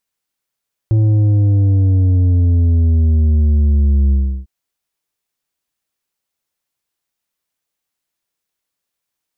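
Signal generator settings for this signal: sub drop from 110 Hz, over 3.55 s, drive 7 dB, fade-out 0.34 s, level -10 dB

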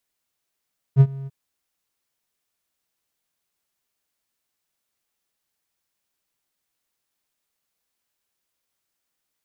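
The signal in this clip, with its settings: ADSR triangle 136 Hz, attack 46 ms, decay 56 ms, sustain -23 dB, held 0.31 s, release 30 ms -4.5 dBFS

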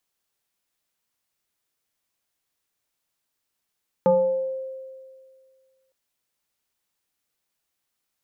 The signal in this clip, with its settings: FM tone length 1.86 s, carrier 527 Hz, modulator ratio 0.65, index 0.82, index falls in 0.87 s exponential, decay 2.00 s, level -13 dB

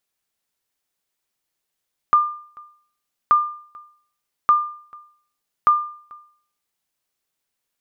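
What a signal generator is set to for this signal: sonar ping 1.2 kHz, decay 0.53 s, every 1.18 s, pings 4, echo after 0.44 s, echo -27 dB -7.5 dBFS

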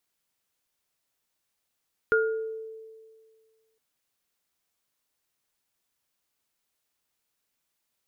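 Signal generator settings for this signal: sine partials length 1.66 s, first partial 443 Hz, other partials 1.42 kHz, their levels 1.5 dB, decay 1.89 s, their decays 0.52 s, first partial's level -20 dB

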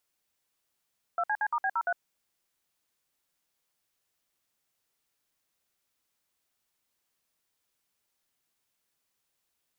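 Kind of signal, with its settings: DTMF "2CC*B03", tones 57 ms, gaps 58 ms, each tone -28 dBFS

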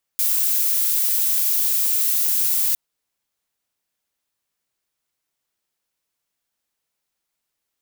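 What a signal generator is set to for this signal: noise violet, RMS -19.5 dBFS 2.56 s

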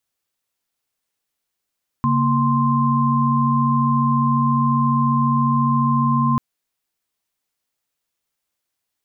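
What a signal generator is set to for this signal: chord C#3/A#3/C6 sine, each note -19 dBFS 4.34 s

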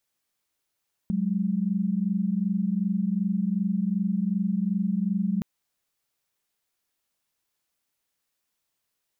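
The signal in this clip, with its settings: chord F#3/G#3 sine, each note -25.5 dBFS 4.32 s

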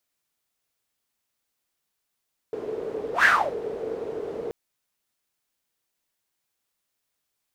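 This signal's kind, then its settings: whoosh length 1.98 s, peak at 0.71 s, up 0.12 s, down 0.33 s, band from 440 Hz, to 1.7 kHz, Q 9.6, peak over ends 16 dB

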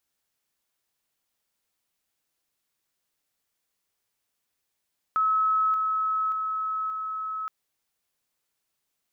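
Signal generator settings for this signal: level ladder 1.29 kHz -20 dBFS, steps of -3 dB, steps 4, 0.58 s 0.00 s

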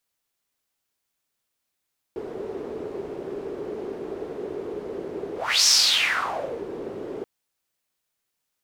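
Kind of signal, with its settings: whoosh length 5.08 s, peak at 3.49 s, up 0.32 s, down 1.03 s, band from 400 Hz, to 5.6 kHz, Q 5.3, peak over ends 16 dB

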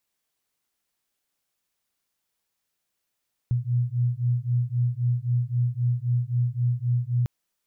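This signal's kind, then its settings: beating tones 120 Hz, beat 3.8 Hz, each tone -24.5 dBFS 3.75 s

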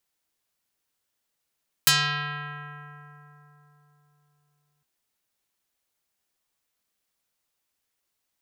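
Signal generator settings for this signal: plucked string D3, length 2.96 s, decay 3.91 s, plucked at 0.5, dark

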